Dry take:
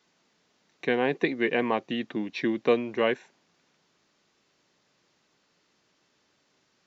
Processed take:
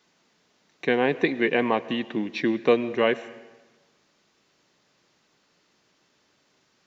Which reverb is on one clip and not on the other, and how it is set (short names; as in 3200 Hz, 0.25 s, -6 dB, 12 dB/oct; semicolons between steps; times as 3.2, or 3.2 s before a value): digital reverb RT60 1.2 s, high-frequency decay 0.85×, pre-delay 70 ms, DRR 16.5 dB; gain +3 dB